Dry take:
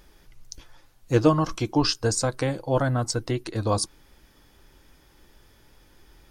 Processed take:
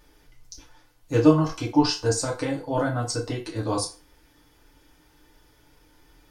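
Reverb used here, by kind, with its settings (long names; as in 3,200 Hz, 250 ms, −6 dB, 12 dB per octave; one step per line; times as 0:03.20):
feedback delay network reverb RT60 0.34 s, low-frequency decay 0.7×, high-frequency decay 0.85×, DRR −3 dB
level −5.5 dB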